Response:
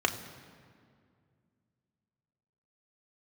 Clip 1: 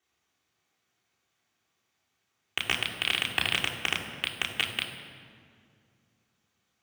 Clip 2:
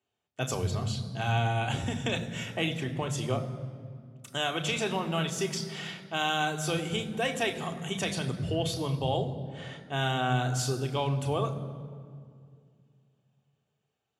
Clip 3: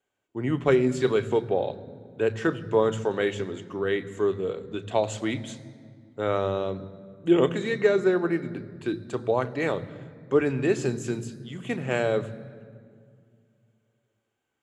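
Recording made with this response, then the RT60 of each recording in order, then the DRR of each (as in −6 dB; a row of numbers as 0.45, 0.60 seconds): 2; 2.2, 2.2, 2.2 seconds; −4.5, 4.0, 10.5 decibels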